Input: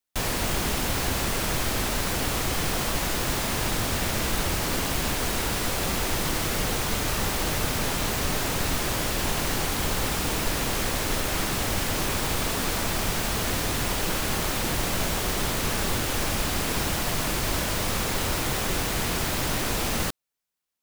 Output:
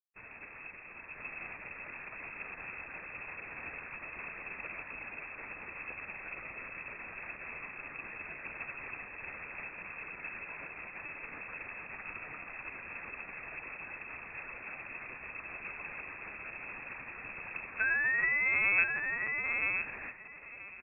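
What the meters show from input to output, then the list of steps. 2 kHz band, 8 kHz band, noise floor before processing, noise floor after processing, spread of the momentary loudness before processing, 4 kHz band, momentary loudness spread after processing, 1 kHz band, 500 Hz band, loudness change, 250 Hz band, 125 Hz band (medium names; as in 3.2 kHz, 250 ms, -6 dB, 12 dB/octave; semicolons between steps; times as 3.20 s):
-3.0 dB, under -40 dB, -28 dBFS, -50 dBFS, 0 LU, under -40 dB, 14 LU, -17.0 dB, -21.0 dB, -11.0 dB, -25.0 dB, -28.5 dB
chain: high-pass 130 Hz 6 dB/octave; word length cut 6-bit, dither none; painted sound fall, 17.79–18.84 s, 340–1100 Hz -23 dBFS; feedback delay 981 ms, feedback 40%, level -3 dB; LPC vocoder at 8 kHz pitch kept; frequency inversion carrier 2.6 kHz; upward expansion 2.5:1, over -41 dBFS; trim -4.5 dB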